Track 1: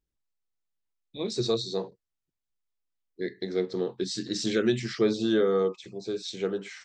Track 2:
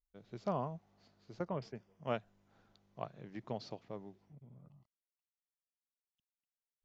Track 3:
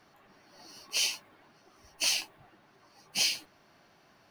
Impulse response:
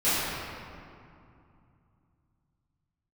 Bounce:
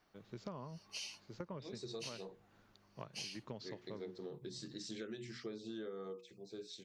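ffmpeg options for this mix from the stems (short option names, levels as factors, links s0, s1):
-filter_complex "[0:a]bandreject=f=60:t=h:w=6,bandreject=f=120:t=h:w=6,bandreject=f=180:t=h:w=6,bandreject=f=240:t=h:w=6,bandreject=f=300:t=h:w=6,bandreject=f=360:t=h:w=6,bandreject=f=420:t=h:w=6,bandreject=f=480:t=h:w=6,adelay=450,volume=0.188[s0];[1:a]equalizer=f=720:t=o:w=0.29:g=-11.5,volume=1.06[s1];[2:a]lowpass=6100,volume=0.237[s2];[s1][s2]amix=inputs=2:normalize=0,highshelf=f=6300:g=5.5,alimiter=level_in=1.5:limit=0.0631:level=0:latency=1:release=444,volume=0.668,volume=1[s3];[s0][s3]amix=inputs=2:normalize=0,acompressor=threshold=0.00794:ratio=6"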